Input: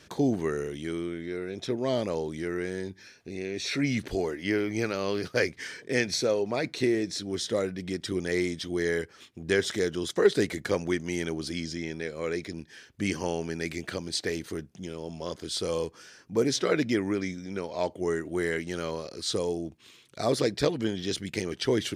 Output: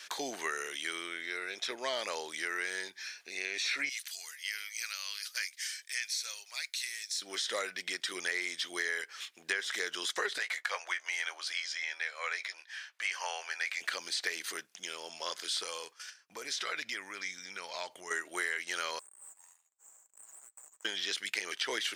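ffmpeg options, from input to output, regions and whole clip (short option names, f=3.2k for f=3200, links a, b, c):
-filter_complex "[0:a]asettb=1/sr,asplit=3[a][b][c];[a]atrim=end=3.894[d];[b]atrim=start=3.89:end=7.22,asetpts=PTS-STARTPTS,afade=t=in:d=0.004:c=qsin,afade=t=out:st=3.326:d=0.004:c=qsin,highpass=f=920:p=1,aderivative[e];[c]atrim=start=7.216[f];[d][e]acrossfade=d=0.004:c1=hsin:c2=qsin[g];[g][f]acrossfade=d=0.004:c1=qsin:c2=hsin,asettb=1/sr,asplit=3[h][i][j];[h]atrim=end=10.384[k];[i]atrim=start=10.38:end=13.81,asetpts=PTS-STARTPTS,afade=t=in:d=0.004:c=qsin,afade=t=out:st=3.426:d=0.004:c=qsin,highpass=f=600:w=0.5412,highpass=f=600:w=1.3066,highshelf=f=4.5k:g=-12,asplit=2[l][m];[m]adelay=16,volume=-11dB[n];[l][n]amix=inputs=2:normalize=0,atrim=end_sample=151263[o];[j]atrim=start=13.806[p];[k][o]acrossfade=d=0.004:c1=hsin:c2=qsin[q];[q][p]acrossfade=d=0.004:c1=qsin:c2=hsin,asettb=1/sr,asplit=3[r][s][t];[r]atrim=end=15.634[u];[s]atrim=start=15.63:end=18.11,asetpts=PTS-STARTPTS,afade=t=in:d=0.004:c=qsin,afade=t=out:st=2.476:d=0.004:c=qsin,agate=range=-16dB:threshold=-50dB:ratio=16:release=100:detection=peak,asubboost=boost=6.5:cutoff=160,acompressor=threshold=-33dB:ratio=4:attack=3.2:release=140:knee=1:detection=peak[v];[t]atrim=start=18.106[w];[u][v]acrossfade=d=0.004:c1=hsin:c2=qsin[x];[x][w]acrossfade=d=0.004:c1=qsin:c2=hsin,asettb=1/sr,asplit=3[y][z][aa];[y]atrim=end=18.994[ab];[z]atrim=start=18.99:end=20.85,asetpts=PTS-STARTPTS,afade=t=in:d=0.004:c=qsin,afade=t=out:st=1.856:d=0.004:c=qsin,asuperpass=centerf=3900:order=4:qfactor=4.6,acompressor=threshold=-53dB:ratio=5:attack=3.2:release=140:knee=1:detection=peak,aeval=exprs='abs(val(0))':c=same[ac];[aa]atrim=start=20.846[ad];[ab][ac]acrossfade=d=0.004:c1=hsin:c2=qsin[ae];[ae][ad]acrossfade=d=0.004:c1=qsin:c2=hsin,acrossover=split=2500[af][ag];[ag]acompressor=threshold=-40dB:ratio=4:attack=1:release=60[ah];[af][ah]amix=inputs=2:normalize=0,highpass=1.4k,acompressor=threshold=-39dB:ratio=6,volume=9dB"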